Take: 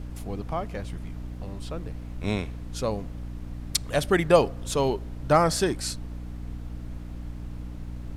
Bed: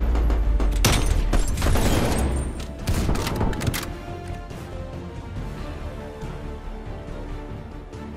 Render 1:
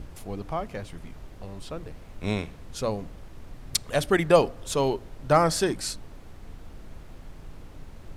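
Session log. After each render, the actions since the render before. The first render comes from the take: notches 60/120/180/240/300 Hz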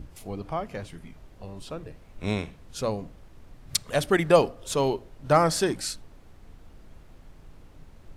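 noise print and reduce 6 dB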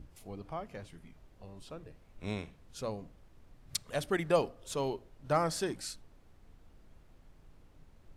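gain -9.5 dB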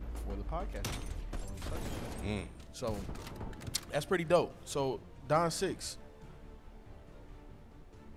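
add bed -20 dB

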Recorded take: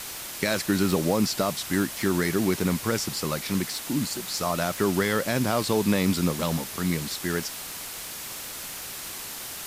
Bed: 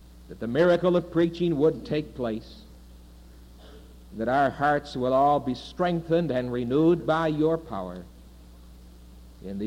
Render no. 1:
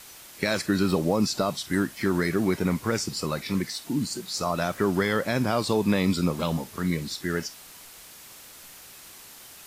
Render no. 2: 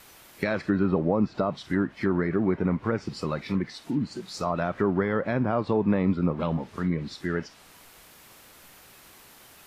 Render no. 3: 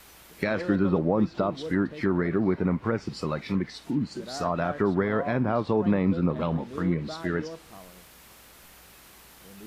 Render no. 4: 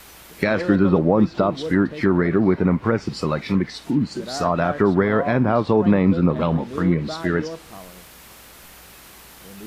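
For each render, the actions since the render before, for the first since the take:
noise print and reduce 10 dB
bell 7100 Hz -8.5 dB 2.2 oct; treble ducked by the level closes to 1700 Hz, closed at -21 dBFS
add bed -15 dB
gain +7 dB

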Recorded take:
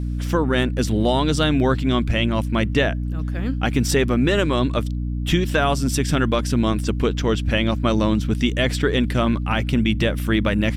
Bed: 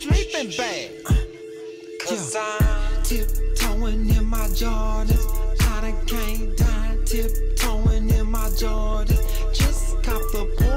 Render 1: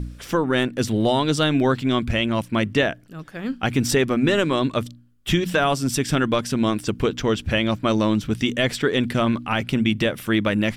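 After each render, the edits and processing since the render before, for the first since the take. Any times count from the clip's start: de-hum 60 Hz, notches 5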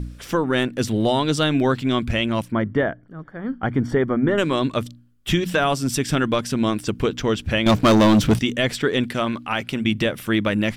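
2.52–4.38 polynomial smoothing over 41 samples; 7.66–8.39 sample leveller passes 3; 9.04–9.85 low shelf 240 Hz -8.5 dB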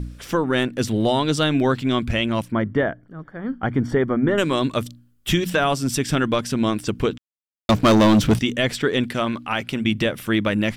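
4.37–5.5 high shelf 6800 Hz +7 dB; 7.18–7.69 mute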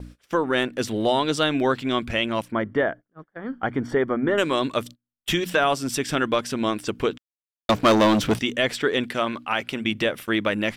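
gate -34 dBFS, range -26 dB; tone controls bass -10 dB, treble -3 dB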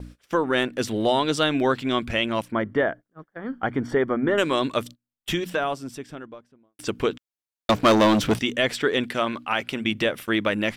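4.8–6.79 studio fade out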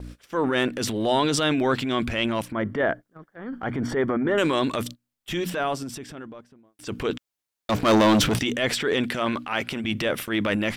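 transient shaper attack -7 dB, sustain +7 dB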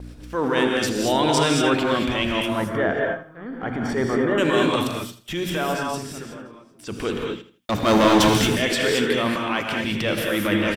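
feedback echo 81 ms, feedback 30%, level -14 dB; non-linear reverb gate 0.25 s rising, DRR -0.5 dB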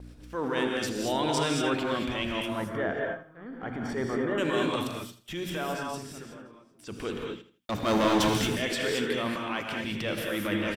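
gain -8 dB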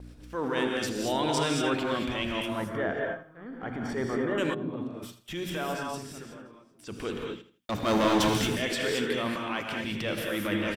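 4.53–5.02 band-pass 110 Hz -> 330 Hz, Q 0.9

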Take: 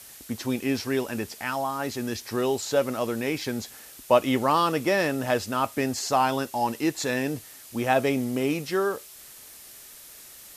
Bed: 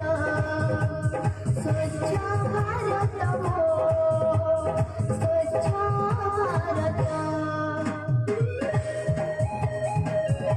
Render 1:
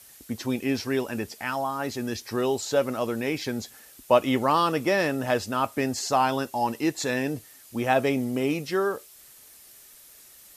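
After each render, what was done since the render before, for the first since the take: denoiser 6 dB, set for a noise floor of -47 dBFS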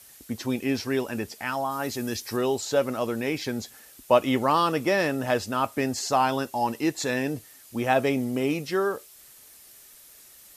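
1.7–2.36 high shelf 7900 Hz -> 5300 Hz +7.5 dB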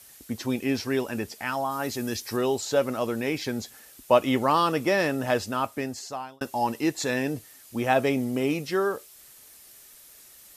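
5.43–6.41 fade out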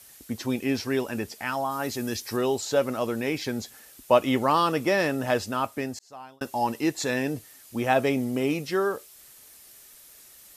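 5.99–6.47 fade in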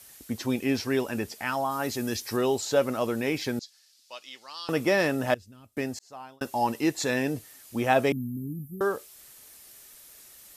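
3.59–4.69 band-pass 4700 Hz, Q 3; 5.34–5.77 passive tone stack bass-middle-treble 10-0-1; 8.12–8.81 inverse Chebyshev band-stop 670–5100 Hz, stop band 60 dB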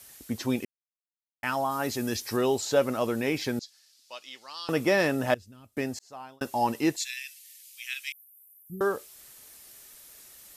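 0.65–1.43 mute; 6.96–8.7 steep high-pass 2200 Hz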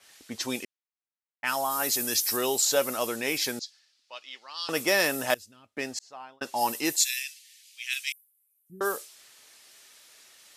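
RIAA curve recording; low-pass opened by the level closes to 1700 Hz, open at -23.5 dBFS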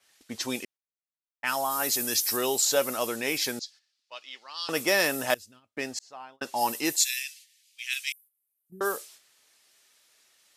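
gate -51 dBFS, range -9 dB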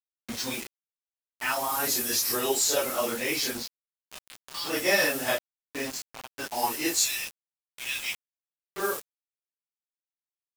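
phase scrambler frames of 0.1 s; bit-crush 6-bit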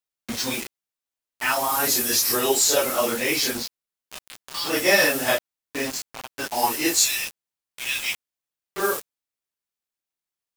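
gain +5.5 dB

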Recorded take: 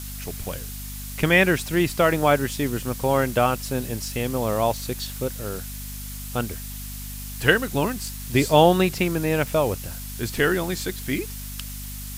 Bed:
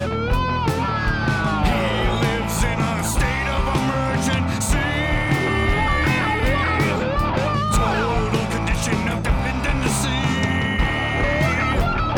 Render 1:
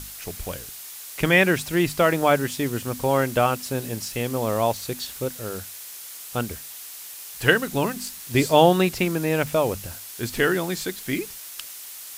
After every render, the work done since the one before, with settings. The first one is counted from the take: notches 50/100/150/200/250 Hz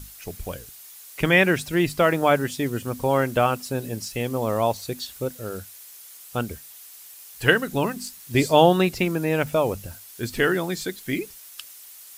denoiser 8 dB, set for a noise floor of -39 dBFS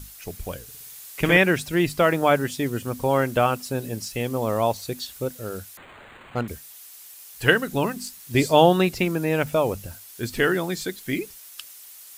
0.63–1.37 flutter echo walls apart 10.3 m, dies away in 0.96 s; 5.77–6.48 decimation joined by straight lines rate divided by 8×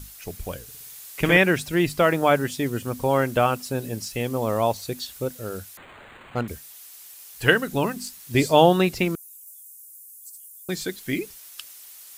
9.15–10.69 inverse Chebyshev high-pass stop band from 1900 Hz, stop band 70 dB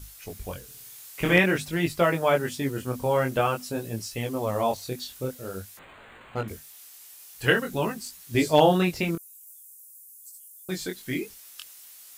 chorus 0.49 Hz, delay 17.5 ms, depth 6.7 ms; hard clip -7.5 dBFS, distortion -31 dB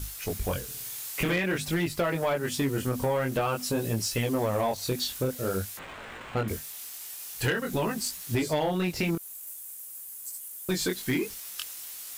compressor 12:1, threshold -29 dBFS, peak gain reduction 17 dB; sample leveller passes 2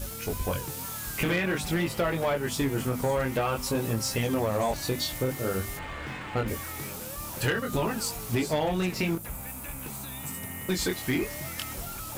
add bed -20 dB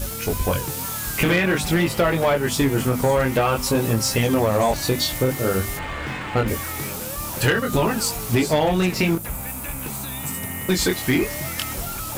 gain +8 dB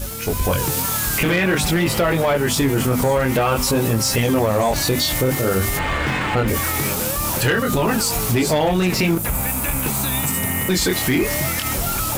AGC gain up to 11.5 dB; limiter -11 dBFS, peak gain reduction 9 dB

